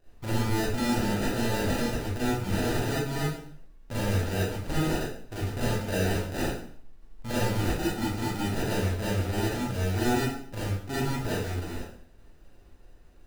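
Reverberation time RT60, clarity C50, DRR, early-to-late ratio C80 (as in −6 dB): 0.55 s, −2.0 dB, −9.0 dB, 3.5 dB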